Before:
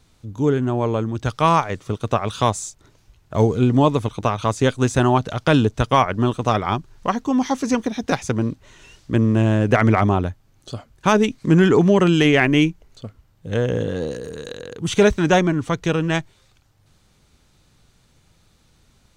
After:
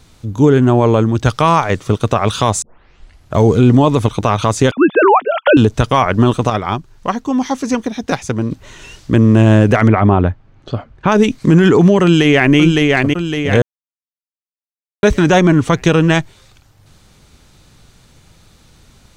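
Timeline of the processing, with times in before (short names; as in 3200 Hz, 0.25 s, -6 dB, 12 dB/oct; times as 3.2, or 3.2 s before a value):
2.62 tape start 0.72 s
4.71–5.57 sine-wave speech
6.5–8.51 gain -7.5 dB
9.88–11.12 LPF 2400 Hz
12.03–12.57 echo throw 0.56 s, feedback 50%, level -8 dB
13.62–15.03 mute
whole clip: maximiser +11.5 dB; gain -1 dB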